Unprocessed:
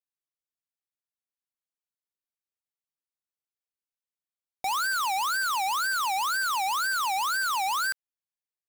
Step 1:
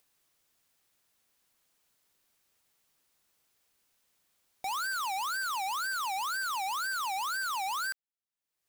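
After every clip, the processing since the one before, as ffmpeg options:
-af "acompressor=mode=upward:threshold=-46dB:ratio=2.5,volume=-6dB"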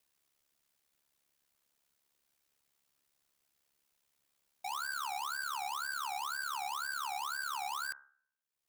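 -af "bandreject=f=67.53:t=h:w=4,bandreject=f=135.06:t=h:w=4,bandreject=f=202.59:t=h:w=4,bandreject=f=270.12:t=h:w=4,bandreject=f=337.65:t=h:w=4,bandreject=f=405.18:t=h:w=4,bandreject=f=472.71:t=h:w=4,bandreject=f=540.24:t=h:w=4,bandreject=f=607.77:t=h:w=4,bandreject=f=675.3:t=h:w=4,bandreject=f=742.83:t=h:w=4,bandreject=f=810.36:t=h:w=4,bandreject=f=877.89:t=h:w=4,bandreject=f=945.42:t=h:w=4,bandreject=f=1.01295k:t=h:w=4,bandreject=f=1.08048k:t=h:w=4,bandreject=f=1.14801k:t=h:w=4,bandreject=f=1.21554k:t=h:w=4,bandreject=f=1.28307k:t=h:w=4,bandreject=f=1.3506k:t=h:w=4,bandreject=f=1.41813k:t=h:w=4,bandreject=f=1.48566k:t=h:w=4,bandreject=f=1.55319k:t=h:w=4,bandreject=f=1.62072k:t=h:w=4,bandreject=f=1.68825k:t=h:w=4,bandreject=f=1.75578k:t=h:w=4,bandreject=f=1.82331k:t=h:w=4,bandreject=f=1.89084k:t=h:w=4,aeval=exprs='val(0)*sin(2*PI*35*n/s)':c=same,volume=-2dB"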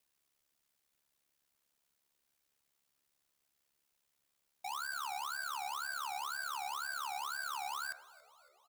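-filter_complex "[0:a]asplit=6[a][b][c][d][e][f];[b]adelay=279,afreqshift=-73,volume=-21dB[g];[c]adelay=558,afreqshift=-146,volume=-25.7dB[h];[d]adelay=837,afreqshift=-219,volume=-30.5dB[i];[e]adelay=1116,afreqshift=-292,volume=-35.2dB[j];[f]adelay=1395,afreqshift=-365,volume=-39.9dB[k];[a][g][h][i][j][k]amix=inputs=6:normalize=0,volume=-2dB"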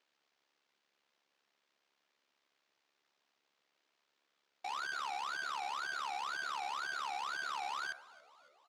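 -af "acrusher=samples=4:mix=1:aa=0.000001,highpass=290,lowpass=5.2k,volume=1dB"

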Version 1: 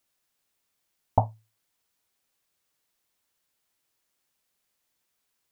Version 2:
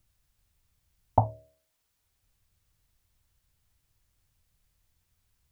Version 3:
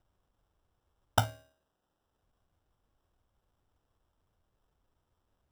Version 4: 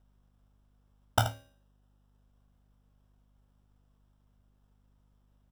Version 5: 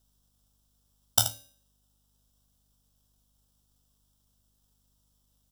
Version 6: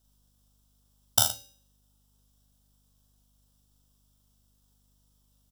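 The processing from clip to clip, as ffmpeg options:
-filter_complex "[0:a]acrossover=split=100[a][b];[a]acompressor=mode=upward:threshold=-49dB:ratio=2.5[c];[c][b]amix=inputs=2:normalize=0,bandreject=f=71.04:t=h:w=4,bandreject=f=142.08:t=h:w=4,bandreject=f=213.12:t=h:w=4,bandreject=f=284.16:t=h:w=4,bandreject=f=355.2:t=h:w=4,bandreject=f=426.24:t=h:w=4,bandreject=f=497.28:t=h:w=4,bandreject=f=568.32:t=h:w=4,bandreject=f=639.36:t=h:w=4"
-af "bandreject=f=266.5:t=h:w=4,bandreject=f=533:t=h:w=4,bandreject=f=799.5:t=h:w=4,bandreject=f=1.066k:t=h:w=4,bandreject=f=1.3325k:t=h:w=4,bandreject=f=1.599k:t=h:w=4,bandreject=f=1.8655k:t=h:w=4,bandreject=f=2.132k:t=h:w=4,bandreject=f=2.3985k:t=h:w=4,bandreject=f=2.665k:t=h:w=4,bandreject=f=2.9315k:t=h:w=4,bandreject=f=3.198k:t=h:w=4,bandreject=f=3.4645k:t=h:w=4,bandreject=f=3.731k:t=h:w=4,bandreject=f=3.9975k:t=h:w=4,bandreject=f=4.264k:t=h:w=4,bandreject=f=4.5305k:t=h:w=4,bandreject=f=4.797k:t=h:w=4,bandreject=f=5.0635k:t=h:w=4,bandreject=f=5.33k:t=h:w=4,bandreject=f=5.5965k:t=h:w=4,bandreject=f=5.863k:t=h:w=4,bandreject=f=6.1295k:t=h:w=4,bandreject=f=6.396k:t=h:w=4,bandreject=f=6.6625k:t=h:w=4,bandreject=f=6.929k:t=h:w=4,bandreject=f=7.1955k:t=h:w=4,bandreject=f=7.462k:t=h:w=4,bandreject=f=7.7285k:t=h:w=4,bandreject=f=7.995k:t=h:w=4,bandreject=f=8.2615k:t=h:w=4,bandreject=f=8.528k:t=h:w=4,bandreject=f=8.7945k:t=h:w=4,bandreject=f=9.061k:t=h:w=4,acrusher=samples=20:mix=1:aa=0.000001,volume=-4.5dB"
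-filter_complex "[0:a]asplit=2[a][b];[b]aecho=0:1:26|79:0.473|0.282[c];[a][c]amix=inputs=2:normalize=0,aeval=exprs='val(0)+0.000501*(sin(2*PI*50*n/s)+sin(2*PI*2*50*n/s)/2+sin(2*PI*3*50*n/s)/3+sin(2*PI*4*50*n/s)/4+sin(2*PI*5*50*n/s)/5)':c=same"
-af "aexciter=amount=8.2:drive=5.1:freq=3.3k,volume=-6dB"
-filter_complex "[0:a]asplit=2[a][b];[b]adelay=40,volume=-3.5dB[c];[a][c]amix=inputs=2:normalize=0"

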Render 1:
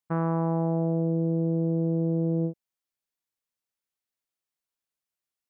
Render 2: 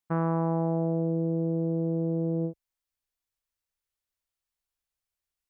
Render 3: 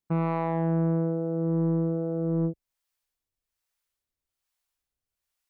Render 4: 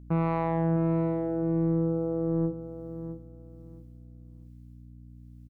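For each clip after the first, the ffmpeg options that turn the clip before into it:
-af "asubboost=boost=9.5:cutoff=66"
-filter_complex "[0:a]acrossover=split=490[a][b];[a]aeval=exprs='val(0)*(1-0.7/2+0.7/2*cos(2*PI*1.2*n/s))':c=same[c];[b]aeval=exprs='val(0)*(1-0.7/2-0.7/2*cos(2*PI*1.2*n/s))':c=same[d];[c][d]amix=inputs=2:normalize=0,asoftclip=type=tanh:threshold=-25dB,volume=6.5dB"
-af "aeval=exprs='val(0)+0.00501*(sin(2*PI*60*n/s)+sin(2*PI*2*60*n/s)/2+sin(2*PI*3*60*n/s)/3+sin(2*PI*4*60*n/s)/4+sin(2*PI*5*60*n/s)/5)':c=same,aecho=1:1:659|1318|1977:0.282|0.062|0.0136"

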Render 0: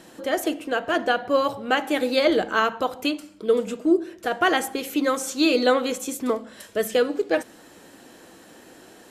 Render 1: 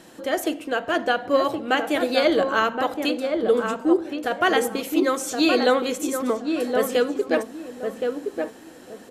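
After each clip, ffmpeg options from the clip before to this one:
-filter_complex "[0:a]asplit=2[a][b];[b]adelay=1070,lowpass=f=1.2k:p=1,volume=-4dB,asplit=2[c][d];[d]adelay=1070,lowpass=f=1.2k:p=1,volume=0.27,asplit=2[e][f];[f]adelay=1070,lowpass=f=1.2k:p=1,volume=0.27,asplit=2[g][h];[h]adelay=1070,lowpass=f=1.2k:p=1,volume=0.27[i];[a][c][e][g][i]amix=inputs=5:normalize=0"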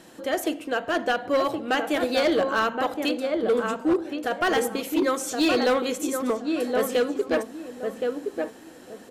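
-af "asoftclip=type=hard:threshold=-15dB,volume=-1.5dB"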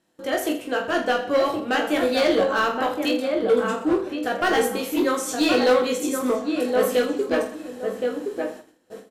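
-filter_complex "[0:a]agate=range=-22dB:threshold=-41dB:ratio=16:detection=peak,asplit=2[a][b];[b]aecho=0:1:20|46|79.8|123.7|180.9:0.631|0.398|0.251|0.158|0.1[c];[a][c]amix=inputs=2:normalize=0"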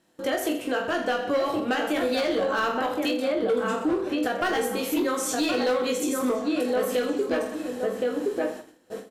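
-af "alimiter=limit=-20.5dB:level=0:latency=1:release=183,volume=3.5dB"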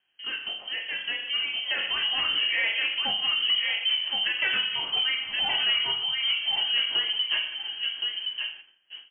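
-af "lowshelf=f=200:g=-6,lowpass=f=2.9k:t=q:w=0.5098,lowpass=f=2.9k:t=q:w=0.6013,lowpass=f=2.9k:t=q:w=0.9,lowpass=f=2.9k:t=q:w=2.563,afreqshift=-3400,dynaudnorm=f=300:g=11:m=6dB,volume=-6dB"

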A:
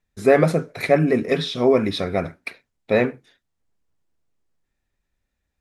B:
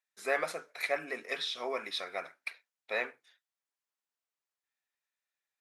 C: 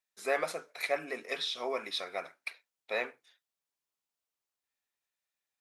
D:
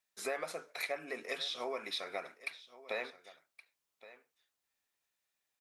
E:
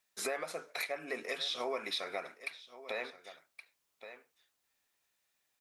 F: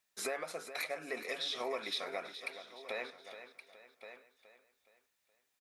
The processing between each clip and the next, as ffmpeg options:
-af "highpass=970,volume=-7dB"
-af "equalizer=f=1.7k:w=1.6:g=-4,volume=1.5dB"
-af "acompressor=threshold=-41dB:ratio=3,aecho=1:1:1120:0.133,volume=3.5dB"
-af "alimiter=level_in=6.5dB:limit=-24dB:level=0:latency=1:release=427,volume=-6.5dB,volume=5.5dB"
-af "aecho=1:1:420|840|1260|1680:0.266|0.109|0.0447|0.0183,volume=-1.5dB"

